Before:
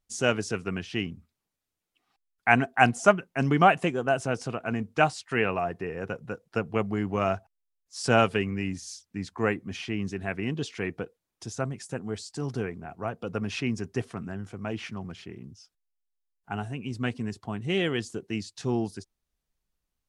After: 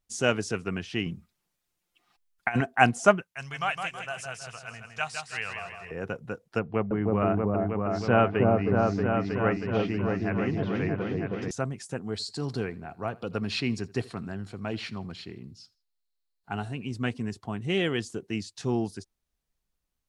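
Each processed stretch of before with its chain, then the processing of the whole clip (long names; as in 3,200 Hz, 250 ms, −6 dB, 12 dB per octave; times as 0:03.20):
0:01.06–0:02.61: parametric band 300 Hz −2.5 dB 2.7 octaves + comb filter 5.7 ms, depth 45% + compressor whose output falls as the input rises −24 dBFS, ratio −0.5
0:03.22–0:05.91: guitar amp tone stack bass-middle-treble 10-0-10 + repeating echo 161 ms, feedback 45%, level −6 dB
0:06.59–0:11.51: treble cut that deepens with the level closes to 2,300 Hz, closed at −26 dBFS + high-frequency loss of the air 170 metres + echo whose low-pass opens from repeat to repeat 317 ms, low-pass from 750 Hz, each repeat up 1 octave, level 0 dB
0:12.12–0:16.86: parametric band 4,200 Hz +13.5 dB 0.3 octaves + notch filter 6,100 Hz + repeating echo 80 ms, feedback 36%, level −23 dB
whole clip: no processing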